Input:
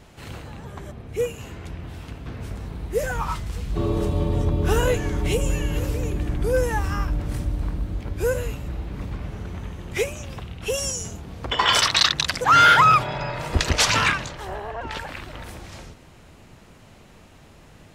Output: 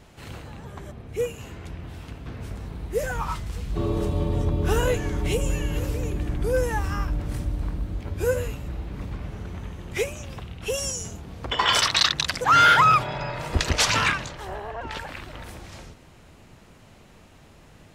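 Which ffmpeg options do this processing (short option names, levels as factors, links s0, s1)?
-filter_complex "[0:a]asettb=1/sr,asplit=3[s0][s1][s2];[s0]atrim=end=8.034[s3];[s1]atrim=start=8.03:end=8.48,asetpts=PTS-STARTPTS,afade=t=in:d=0.004:c=qsin,afade=t=out:st=0.446:d=0.004:c=qsin,asplit=2[s4][s5];[s5]adelay=12,volume=0.501[s6];[s4][s6]amix=inputs=2:normalize=0,atrim=end_sample=19845[s7];[s2]atrim=start=8.476[s8];[s3][s7]acrossfade=d=0.004:c1=hsin:c2=qsin[s9];[s9][s8]acrossfade=d=0.004:c1=qsin:c2=hsin,volume=0.794"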